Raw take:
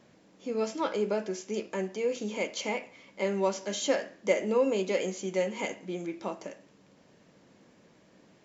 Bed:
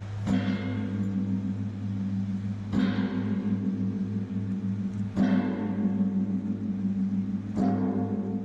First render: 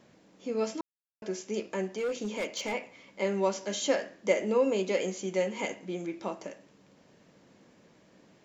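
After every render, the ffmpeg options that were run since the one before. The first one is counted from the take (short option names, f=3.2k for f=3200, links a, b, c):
-filter_complex "[0:a]asettb=1/sr,asplit=3[a][b][c];[a]atrim=end=1.954[d];[b]atrim=start=1.95:end=2.73,asetpts=PTS-STARTPTS,afade=t=in:d=0.004:c=qsin,afade=t=out:st=0.776:d=0.004:c=qsin,asoftclip=type=hard:threshold=-27.5dB[e];[c]atrim=start=2.726[f];[d][e]acrossfade=d=0.004:c1=hsin:c2=qsin[g];[g][f]acrossfade=d=0.004:c1=qsin:c2=hsin,asplit=3[h][i][j];[h]atrim=end=0.81,asetpts=PTS-STARTPTS,afade=t=out:st=0.806:d=0.004:c=hsin[k];[i]atrim=start=0.81:end=1.22,asetpts=PTS-STARTPTS,volume=0[l];[j]atrim=start=1.22,asetpts=PTS-STARTPTS,afade=t=in:d=0.004:c=hsin[m];[k][l][m]concat=n=3:v=0:a=1"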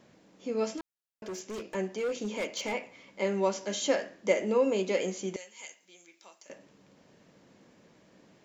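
-filter_complex "[0:a]asettb=1/sr,asplit=3[a][b][c];[a]atrim=end=0.784[d];[b]atrim=start=0.78:end=1.75,asetpts=PTS-STARTPTS,afade=t=in:d=0.004:c=qsin,afade=t=out:st=0.966:d=0.004:c=qsin,volume=35dB,asoftclip=hard,volume=-35dB[e];[c]atrim=start=1.746[f];[d][e]acrossfade=d=0.004:c1=hsin:c2=qsin[g];[g][f]acrossfade=d=0.004:c1=qsin:c2=hsin,asettb=1/sr,asplit=3[h][i][j];[h]atrim=end=5.364[k];[i]atrim=start=5.36:end=6.5,asetpts=PTS-STARTPTS,afade=t=in:d=0.004:c=qsin,afade=t=out:st=1.136:d=0.004:c=qsin,aderivative[l];[j]atrim=start=6.496[m];[k][l]acrossfade=d=0.004:c1=hsin:c2=qsin[n];[n][m]acrossfade=d=0.004:c1=qsin:c2=hsin"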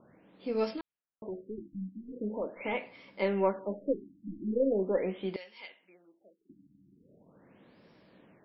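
-af "aeval=exprs='0.266*(cos(1*acos(clip(val(0)/0.266,-1,1)))-cos(1*PI/2))+0.00422*(cos(6*acos(clip(val(0)/0.266,-1,1)))-cos(6*PI/2))':c=same,afftfilt=real='re*lt(b*sr/1024,310*pow(5700/310,0.5+0.5*sin(2*PI*0.41*pts/sr)))':imag='im*lt(b*sr/1024,310*pow(5700/310,0.5+0.5*sin(2*PI*0.41*pts/sr)))':win_size=1024:overlap=0.75"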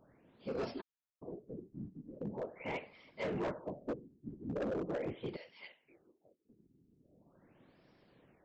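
-af "afftfilt=real='hypot(re,im)*cos(2*PI*random(0))':imag='hypot(re,im)*sin(2*PI*random(1))':win_size=512:overlap=0.75,aresample=16000,asoftclip=type=hard:threshold=-33dB,aresample=44100"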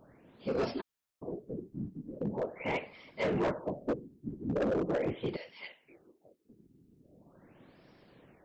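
-af "volume=6.5dB"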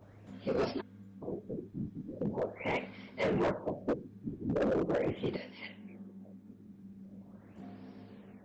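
-filter_complex "[1:a]volume=-23.5dB[a];[0:a][a]amix=inputs=2:normalize=0"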